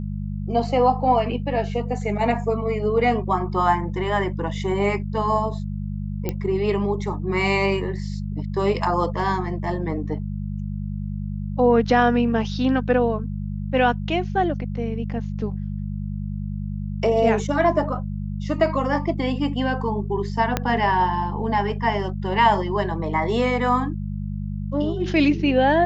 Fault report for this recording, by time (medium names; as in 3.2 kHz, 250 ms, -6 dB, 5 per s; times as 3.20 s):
hum 50 Hz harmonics 4 -28 dBFS
6.29 s: pop -11 dBFS
20.57 s: pop -6 dBFS